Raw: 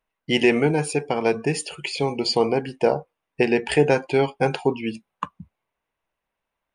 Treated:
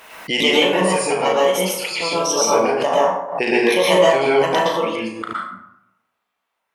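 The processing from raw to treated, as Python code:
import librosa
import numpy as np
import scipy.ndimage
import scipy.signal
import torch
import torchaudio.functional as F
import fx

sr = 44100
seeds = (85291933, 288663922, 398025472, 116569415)

y = fx.pitch_trill(x, sr, semitones=3.5, every_ms=402)
y = fx.highpass(y, sr, hz=740.0, slope=6)
y = fx.room_flutter(y, sr, wall_m=6.2, rt60_s=0.26)
y = fx.rev_plate(y, sr, seeds[0], rt60_s=0.8, hf_ratio=0.5, predelay_ms=105, drr_db=-6.0)
y = fx.pre_swell(y, sr, db_per_s=81.0)
y = F.gain(torch.from_numpy(y), 2.0).numpy()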